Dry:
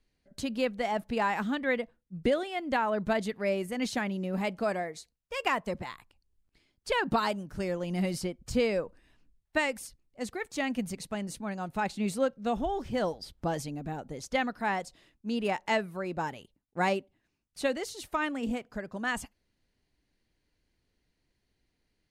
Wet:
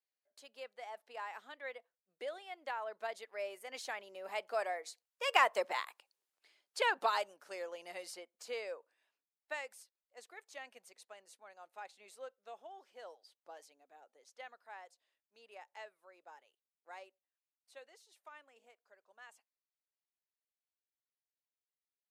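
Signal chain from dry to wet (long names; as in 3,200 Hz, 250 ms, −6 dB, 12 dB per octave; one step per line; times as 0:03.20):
source passing by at 0:05.90, 7 m/s, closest 3.5 metres
high-pass filter 500 Hz 24 dB per octave
level +4.5 dB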